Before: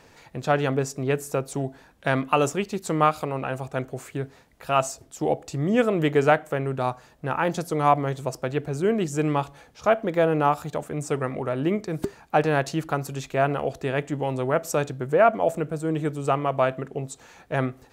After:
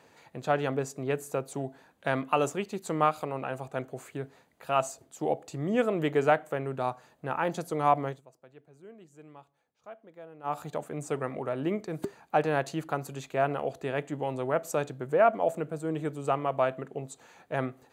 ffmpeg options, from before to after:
-filter_complex "[0:a]asplit=3[s0][s1][s2];[s0]atrim=end=8.21,asetpts=PTS-STARTPTS,afade=t=out:st=8.07:d=0.14:silence=0.0841395[s3];[s1]atrim=start=8.21:end=10.43,asetpts=PTS-STARTPTS,volume=0.0841[s4];[s2]atrim=start=10.43,asetpts=PTS-STARTPTS,afade=t=in:d=0.14:silence=0.0841395[s5];[s3][s4][s5]concat=n=3:v=0:a=1,highpass=120,equalizer=f=720:t=o:w=1.5:g=2.5,bandreject=f=5400:w=7.4,volume=0.473"

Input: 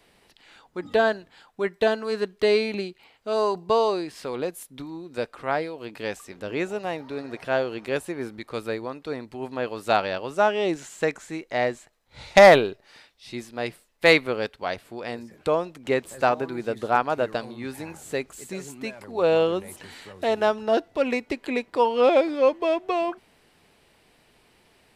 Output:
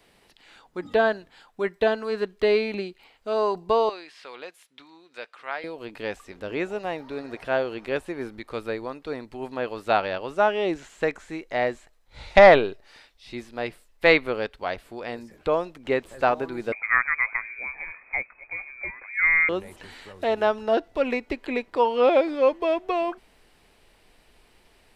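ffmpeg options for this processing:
-filter_complex "[0:a]asettb=1/sr,asplit=3[s0][s1][s2];[s0]atrim=end=3.894[s3];[s1]atrim=start=3.89:end=5.64,asetpts=PTS-STARTPTS,afade=t=in:d=0.004:c=qsin,afade=t=out:st=1.746:d=0.004:c=qsin,bandpass=f=2700:t=q:w=0.72[s4];[s2]atrim=start=5.636[s5];[s3][s4]acrossfade=d=0.004:c1=hsin:c2=qsin[s6];[s6][s5]acrossfade=d=0.004:c1=qsin:c2=hsin,asettb=1/sr,asplit=3[s7][s8][s9];[s7]atrim=end=16.724[s10];[s8]atrim=start=16.72:end=19.49,asetpts=PTS-STARTPTS,afade=t=in:d=0.004:c=qsin,afade=t=out:st=2.766:d=0.004:c=qsin,lowpass=f=2200:t=q:w=0.5098,lowpass=f=2200:t=q:w=0.6013,lowpass=f=2200:t=q:w=0.9,lowpass=f=2200:t=q:w=2.563,afreqshift=-2600[s11];[s9]atrim=start=19.486[s12];[s10][s11]acrossfade=d=0.004:c1=hsin:c2=qsin[s13];[s13][s12]acrossfade=d=0.004:c1=qsin:c2=hsin,acrossover=split=4200[s14][s15];[s15]acompressor=threshold=0.00178:ratio=4:attack=1:release=60[s16];[s14][s16]amix=inputs=2:normalize=0,asubboost=boost=5:cutoff=51"

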